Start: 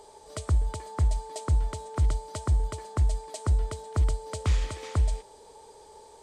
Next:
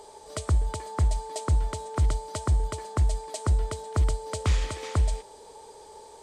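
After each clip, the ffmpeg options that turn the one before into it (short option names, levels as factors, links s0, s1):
-af "lowshelf=f=150:g=-3.5,volume=1.5"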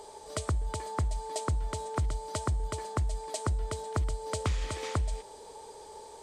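-af "acompressor=threshold=0.0447:ratio=6"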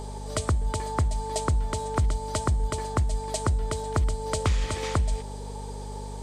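-af "aeval=exprs='val(0)+0.00891*(sin(2*PI*50*n/s)+sin(2*PI*2*50*n/s)/2+sin(2*PI*3*50*n/s)/3+sin(2*PI*4*50*n/s)/4+sin(2*PI*5*50*n/s)/5)':c=same,volume=1.88"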